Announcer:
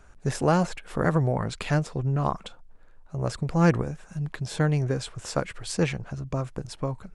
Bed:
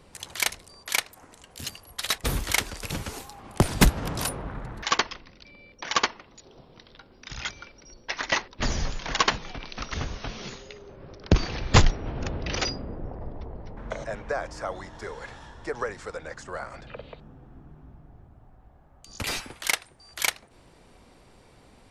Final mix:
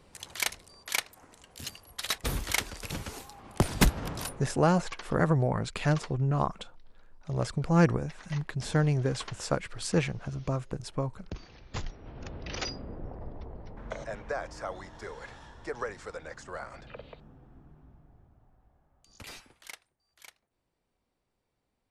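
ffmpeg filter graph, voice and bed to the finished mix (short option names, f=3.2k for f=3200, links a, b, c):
-filter_complex "[0:a]adelay=4150,volume=-2dB[a];[1:a]volume=11.5dB,afade=t=out:st=4.06:d=0.49:silence=0.158489,afade=t=in:st=11.77:d=1.23:silence=0.158489,afade=t=out:st=17.03:d=2.95:silence=0.0794328[b];[a][b]amix=inputs=2:normalize=0"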